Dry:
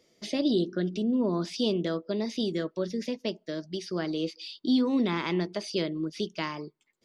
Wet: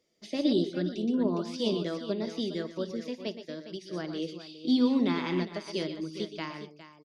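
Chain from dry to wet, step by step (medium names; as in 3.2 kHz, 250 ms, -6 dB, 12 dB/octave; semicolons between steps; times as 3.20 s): on a send: multi-tap echo 56/119/126/134/409 ms -16.5/-9.5/-12/-17/-9 dB; on the sum: upward expansion 1.5:1, over -40 dBFS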